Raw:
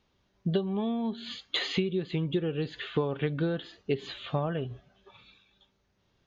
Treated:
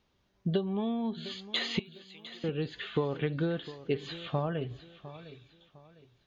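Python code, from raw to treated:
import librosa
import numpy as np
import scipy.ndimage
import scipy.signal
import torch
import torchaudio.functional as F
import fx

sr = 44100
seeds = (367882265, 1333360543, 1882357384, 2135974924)

y = fx.differentiator(x, sr, at=(1.79, 2.44))
y = fx.echo_feedback(y, sr, ms=705, feedback_pct=33, wet_db=-15.5)
y = y * 10.0 ** (-1.5 / 20.0)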